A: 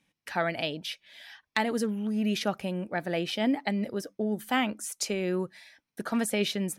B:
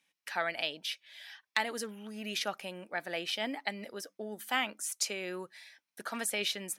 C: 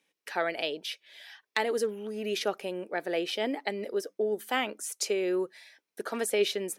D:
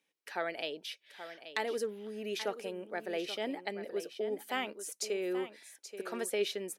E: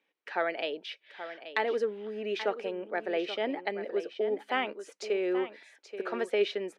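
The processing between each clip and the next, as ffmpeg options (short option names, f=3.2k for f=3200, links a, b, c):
-af "highpass=f=1.2k:p=1"
-af "equalizer=f=410:t=o:w=0.93:g=15"
-af "aecho=1:1:830:0.266,volume=-6dB"
-af "highpass=250,lowpass=2.8k,volume=6dB"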